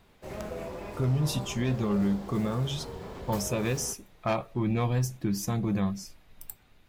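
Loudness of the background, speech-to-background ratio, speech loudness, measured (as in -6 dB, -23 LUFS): -41.0 LUFS, 11.0 dB, -30.0 LUFS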